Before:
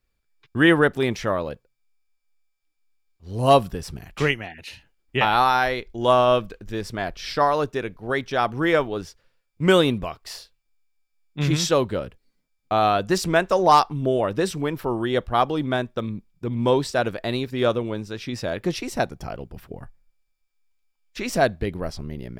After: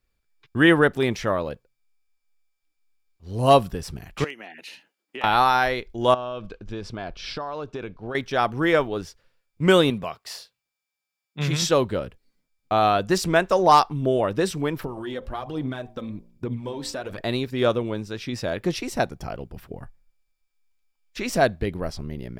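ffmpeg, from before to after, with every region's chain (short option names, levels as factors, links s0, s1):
-filter_complex "[0:a]asettb=1/sr,asplit=3[s0][s1][s2];[s0]atrim=end=4.244[s3];[s1]atrim=start=4.24:end=5.24,asetpts=PTS-STARTPTS,afade=t=in:d=0.004:c=qsin,afade=t=out:st=0.996:d=0.004:c=qsin,highpass=f=220:w=0.5412,highpass=f=220:w=1.3066,acompressor=threshold=0.0141:ratio=2.5:attack=3.2:release=140:knee=1:detection=peak,aeval=exprs='0.0841*(abs(mod(val(0)/0.0841+3,4)-2)-1)':c=same[s4];[s2]atrim=start=5.236[s5];[s3][s4]acrossfade=d=0.004:c1=hsin:c2=qsin[s6];[s6][s5]acrossfade=d=0.004:c1=qsin:c2=hsin,asettb=1/sr,asplit=3[s7][s8][s9];[s7]atrim=end=6.144[s10];[s8]atrim=start=6.14:end=8.15,asetpts=PTS-STARTPTS,afade=t=in:d=0.004:c=qsin,afade=t=out:st=2.006:d=0.004:c=qsin,lowpass=5000,equalizer=f=1900:w=7.8:g=-10,acompressor=threshold=0.0447:ratio=10:attack=3.2:release=140:knee=1:detection=peak[s11];[s9]atrim=start=8.146[s12];[s10][s11]acrossfade=d=0.004:c1=hsin:c2=qsin[s13];[s13][s12]acrossfade=d=0.004:c1=qsin:c2=hsin,asettb=1/sr,asplit=3[s14][s15][s16];[s14]atrim=end=9.904[s17];[s15]atrim=start=9.9:end=11.62,asetpts=PTS-STARTPTS,afade=t=in:d=0.004:c=qsin,afade=t=out:st=1.716:d=0.004:c=qsin,highpass=130,equalizer=f=310:w=3.6:g=-8.5[s18];[s16]atrim=start=11.616[s19];[s17][s18]acrossfade=d=0.004:c1=hsin:c2=qsin[s20];[s20][s19]acrossfade=d=0.004:c1=qsin:c2=hsin,asettb=1/sr,asplit=3[s21][s22][s23];[s21]atrim=end=14.794[s24];[s22]atrim=start=14.79:end=17.21,asetpts=PTS-STARTPTS,afade=t=in:d=0.004:c=qsin,afade=t=out:st=2.416:d=0.004:c=qsin,acompressor=threshold=0.0447:ratio=16:attack=3.2:release=140:knee=1:detection=peak,bandreject=f=57.89:t=h:w=4,bandreject=f=115.78:t=h:w=4,bandreject=f=173.67:t=h:w=4,bandreject=f=231.56:t=h:w=4,bandreject=f=289.45:t=h:w=4,bandreject=f=347.34:t=h:w=4,bandreject=f=405.23:t=h:w=4,bandreject=f=463.12:t=h:w=4,bandreject=f=521.01:t=h:w=4,bandreject=f=578.9:t=h:w=4,bandreject=f=636.79:t=h:w=4,bandreject=f=694.68:t=h:w=4,bandreject=f=752.57:t=h:w=4,bandreject=f=810.46:t=h:w=4,bandreject=f=868.35:t=h:w=4,bandreject=f=926.24:t=h:w=4,bandreject=f=984.13:t=h:w=4,bandreject=f=1042.02:t=h:w=4,aphaser=in_gain=1:out_gain=1:delay=3.9:decay=0.45:speed=1.2:type=sinusoidal[s25];[s23]atrim=start=17.206[s26];[s24][s25]acrossfade=d=0.004:c1=hsin:c2=qsin[s27];[s27][s26]acrossfade=d=0.004:c1=qsin:c2=hsin"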